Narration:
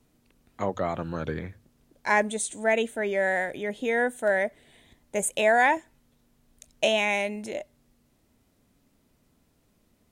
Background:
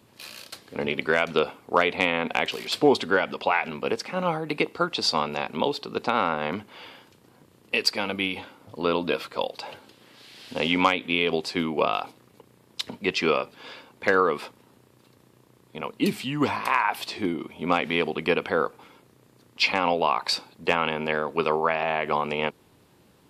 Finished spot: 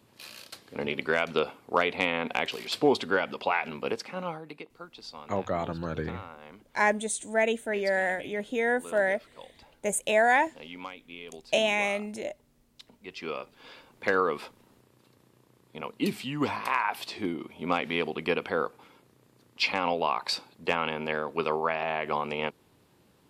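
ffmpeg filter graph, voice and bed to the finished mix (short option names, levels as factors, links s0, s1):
-filter_complex "[0:a]adelay=4700,volume=0.841[s0];[1:a]volume=3.76,afade=t=out:st=3.88:d=0.75:silence=0.158489,afade=t=in:st=13.03:d=0.98:silence=0.16788[s1];[s0][s1]amix=inputs=2:normalize=0"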